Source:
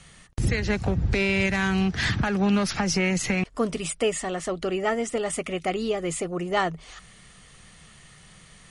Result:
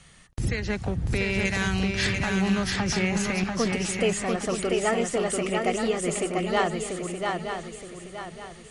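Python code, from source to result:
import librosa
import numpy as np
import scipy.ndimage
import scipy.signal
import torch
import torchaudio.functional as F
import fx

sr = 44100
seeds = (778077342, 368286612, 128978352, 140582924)

p1 = fx.high_shelf(x, sr, hz=3300.0, db=11.0, at=(1.45, 2.07))
p2 = fx.rider(p1, sr, range_db=10, speed_s=2.0)
p3 = p2 + fx.echo_swing(p2, sr, ms=921, ratio=3, feedback_pct=35, wet_db=-4, dry=0)
y = p3 * librosa.db_to_amplitude(-2.5)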